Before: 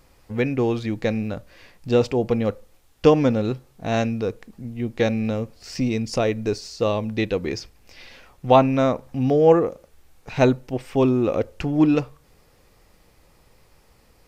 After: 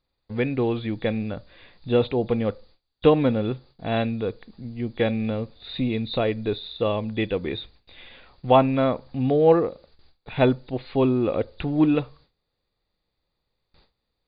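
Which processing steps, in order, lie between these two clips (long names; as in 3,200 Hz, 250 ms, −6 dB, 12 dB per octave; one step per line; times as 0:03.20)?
hearing-aid frequency compression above 3,300 Hz 4 to 1
noise gate with hold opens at −42 dBFS
level −2 dB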